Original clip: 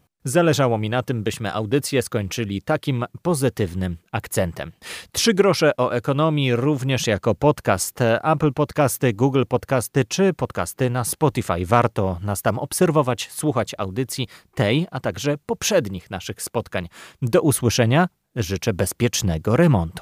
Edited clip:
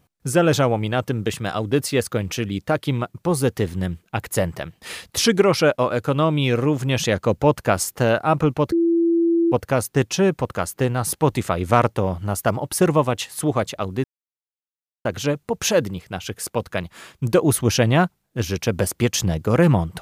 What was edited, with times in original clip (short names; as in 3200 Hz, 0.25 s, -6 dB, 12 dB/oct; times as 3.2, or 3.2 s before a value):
8.72–9.52 bleep 336 Hz -14.5 dBFS
14.04–15.05 mute